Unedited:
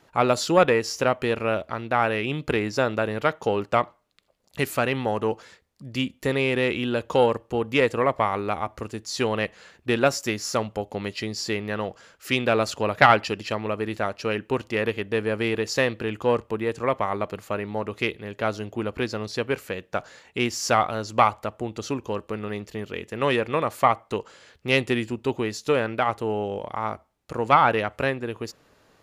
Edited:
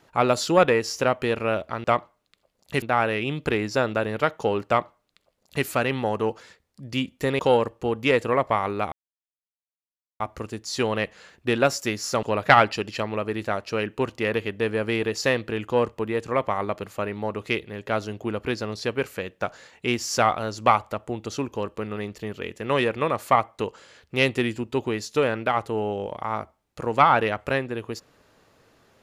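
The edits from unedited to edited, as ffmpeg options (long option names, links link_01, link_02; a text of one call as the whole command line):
ffmpeg -i in.wav -filter_complex "[0:a]asplit=6[link_01][link_02][link_03][link_04][link_05][link_06];[link_01]atrim=end=1.842[link_07];[link_02]atrim=start=3.688:end=4.672[link_08];[link_03]atrim=start=1.838:end=6.412[link_09];[link_04]atrim=start=7.078:end=8.61,asetpts=PTS-STARTPTS,afade=type=out:start_time=1.528:duration=0.004:curve=hsin,apad=pad_dur=1.28[link_10];[link_05]atrim=start=8.61:end=10.642,asetpts=PTS-STARTPTS,afade=type=in:duration=0.004:curve=hsin[link_11];[link_06]atrim=start=12.748[link_12];[link_07][link_08]acrossfade=duration=0.004:curve1=hsin:curve2=hsin[link_13];[link_13][link_09]acrossfade=duration=0.004:curve1=hsin:curve2=hsin[link_14];[link_10][link_11]concat=n=2:v=0:a=1[link_15];[link_14][link_15]acrossfade=duration=0.004:curve1=hsin:curve2=hsin[link_16];[link_16][link_12]acrossfade=duration=0.004:curve1=hsin:curve2=hsin" out.wav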